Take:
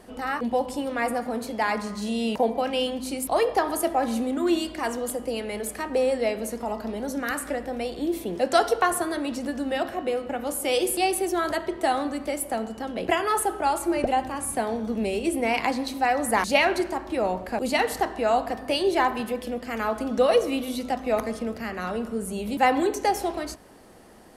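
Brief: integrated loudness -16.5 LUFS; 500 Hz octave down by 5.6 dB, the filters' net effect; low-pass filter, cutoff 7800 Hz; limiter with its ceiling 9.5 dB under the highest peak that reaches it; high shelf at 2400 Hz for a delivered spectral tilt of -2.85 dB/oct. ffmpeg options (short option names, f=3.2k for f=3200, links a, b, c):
-af "lowpass=7.8k,equalizer=f=500:t=o:g=-7.5,highshelf=f=2.4k:g=5,volume=12.5dB,alimiter=limit=-4.5dB:level=0:latency=1"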